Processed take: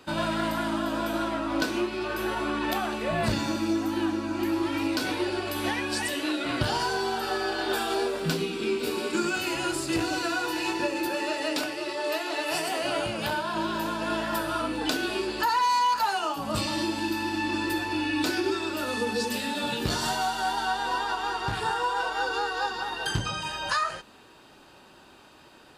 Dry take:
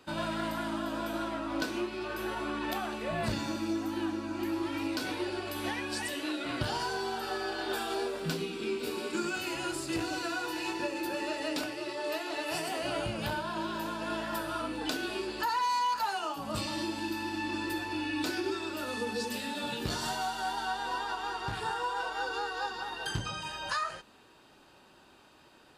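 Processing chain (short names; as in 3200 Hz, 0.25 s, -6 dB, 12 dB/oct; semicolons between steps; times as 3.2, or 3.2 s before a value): 11.08–13.54 low shelf 160 Hz -10.5 dB; gain +6 dB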